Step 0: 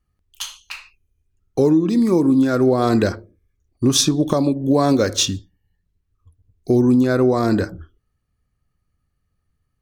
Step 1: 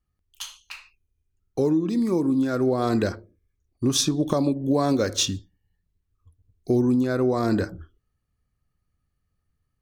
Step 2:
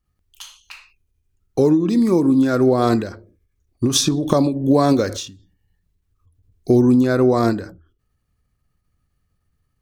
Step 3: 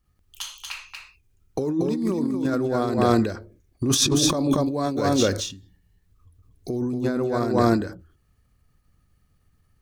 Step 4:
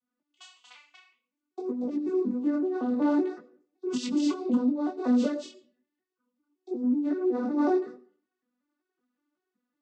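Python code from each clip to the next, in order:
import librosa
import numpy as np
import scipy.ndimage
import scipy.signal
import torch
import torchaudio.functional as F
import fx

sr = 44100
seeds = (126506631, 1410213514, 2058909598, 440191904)

y1 = fx.rider(x, sr, range_db=10, speed_s=0.5)
y1 = y1 * librosa.db_to_amplitude(-5.5)
y2 = fx.end_taper(y1, sr, db_per_s=110.0)
y2 = y2 * librosa.db_to_amplitude(7.0)
y3 = y2 + 10.0 ** (-4.5 / 20.0) * np.pad(y2, (int(234 * sr / 1000.0), 0))[:len(y2)]
y3 = fx.over_compress(y3, sr, threshold_db=-21.0, ratio=-1.0)
y3 = y3 * librosa.db_to_amplitude(-1.5)
y4 = fx.vocoder_arp(y3, sr, chord='minor triad', root=59, every_ms=187)
y4 = fx.rev_freeverb(y4, sr, rt60_s=0.49, hf_ratio=0.7, predelay_ms=50, drr_db=18.5)
y4 = fx.detune_double(y4, sr, cents=19)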